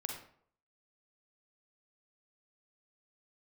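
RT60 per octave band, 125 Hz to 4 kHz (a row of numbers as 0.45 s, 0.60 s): 0.60 s, 0.55 s, 0.60 s, 0.60 s, 0.45 s, 0.40 s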